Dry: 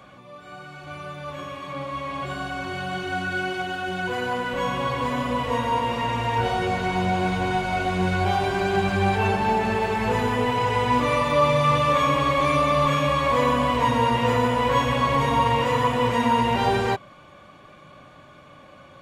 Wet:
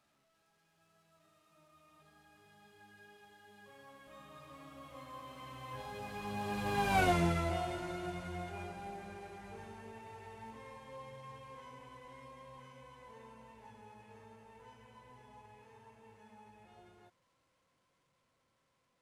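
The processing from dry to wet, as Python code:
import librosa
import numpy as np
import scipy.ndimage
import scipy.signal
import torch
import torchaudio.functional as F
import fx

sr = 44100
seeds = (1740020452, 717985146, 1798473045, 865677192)

y = fx.delta_mod(x, sr, bps=64000, step_db=-32.5)
y = fx.doppler_pass(y, sr, speed_mps=35, closest_m=5.5, pass_at_s=7.03)
y = y * 10.0 ** (-3.5 / 20.0)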